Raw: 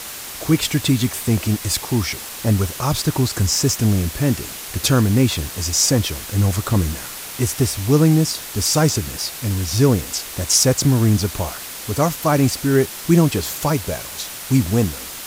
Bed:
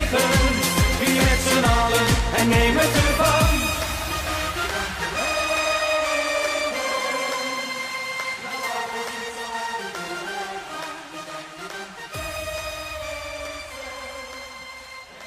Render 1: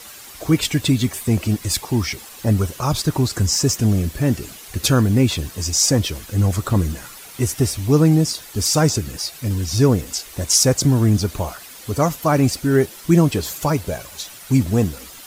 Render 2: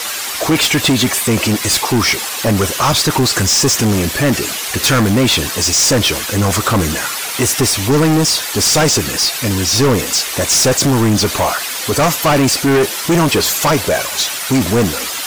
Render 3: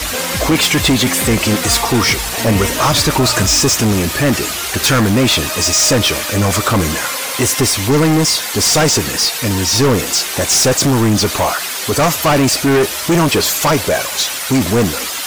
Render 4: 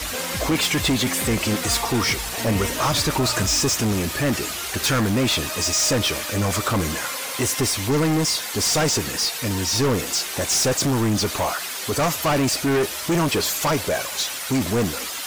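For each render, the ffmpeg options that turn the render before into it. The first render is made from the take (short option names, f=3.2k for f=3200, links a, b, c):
-af "afftdn=nr=10:nf=-33"
-filter_complex "[0:a]asplit=2[a][b];[b]highpass=f=720:p=1,volume=27dB,asoftclip=type=tanh:threshold=-2.5dB[c];[a][c]amix=inputs=2:normalize=0,lowpass=f=6.5k:p=1,volume=-6dB,asoftclip=type=tanh:threshold=-6dB"
-filter_complex "[1:a]volume=-3.5dB[a];[0:a][a]amix=inputs=2:normalize=0"
-af "volume=-8dB"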